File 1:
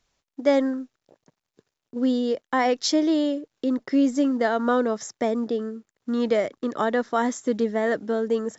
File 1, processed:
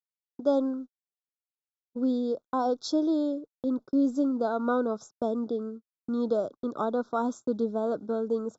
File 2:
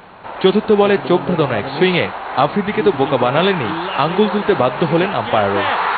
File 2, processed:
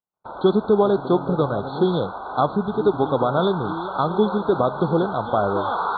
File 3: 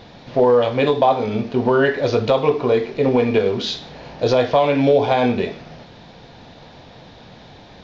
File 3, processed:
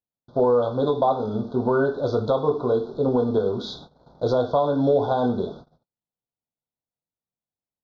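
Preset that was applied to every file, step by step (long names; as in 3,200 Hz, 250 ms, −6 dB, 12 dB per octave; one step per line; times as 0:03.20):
Chebyshev band-stop filter 1,500–3,400 Hz, order 5
noise gate −35 dBFS, range −52 dB
high-shelf EQ 3,700 Hz −10.5 dB
level −4 dB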